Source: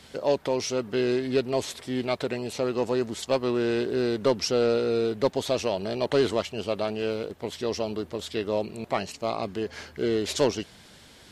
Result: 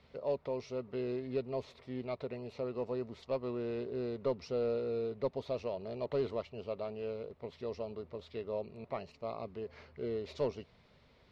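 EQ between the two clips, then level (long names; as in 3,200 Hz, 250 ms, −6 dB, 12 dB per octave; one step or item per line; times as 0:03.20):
thirty-one-band graphic EQ 100 Hz −5 dB, 200 Hz −7 dB, 315 Hz −12 dB, 800 Hz −6 dB, 1,600 Hz −11 dB, 3,150 Hz −7 dB
dynamic equaliser 1,800 Hz, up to −3 dB, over −42 dBFS, Q 0.76
high-frequency loss of the air 320 metres
−7.0 dB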